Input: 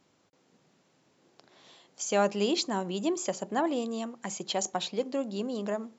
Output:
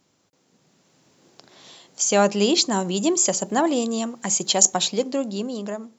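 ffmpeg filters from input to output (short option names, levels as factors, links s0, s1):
-filter_complex "[0:a]bass=f=250:g=3,treble=f=4000:g=7,dynaudnorm=f=250:g=7:m=2.37,asplit=3[s0][s1][s2];[s0]afade=t=out:st=2.71:d=0.02[s3];[s1]adynamicequalizer=threshold=0.0178:dfrequency=5800:dqfactor=0.7:tfrequency=5800:tqfactor=0.7:attack=5:release=100:ratio=0.375:range=3.5:mode=boostabove:tftype=highshelf,afade=t=in:st=2.71:d=0.02,afade=t=out:st=5.01:d=0.02[s4];[s2]afade=t=in:st=5.01:d=0.02[s5];[s3][s4][s5]amix=inputs=3:normalize=0"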